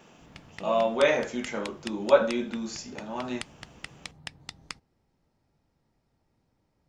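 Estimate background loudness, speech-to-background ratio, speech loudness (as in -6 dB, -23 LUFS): -44.0 LUFS, 16.5 dB, -27.5 LUFS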